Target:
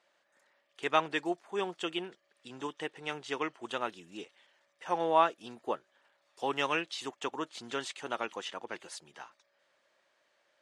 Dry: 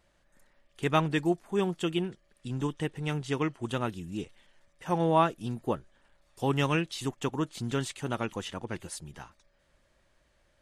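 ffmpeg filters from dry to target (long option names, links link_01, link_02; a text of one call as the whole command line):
ffmpeg -i in.wav -af "highpass=490,lowpass=6400" out.wav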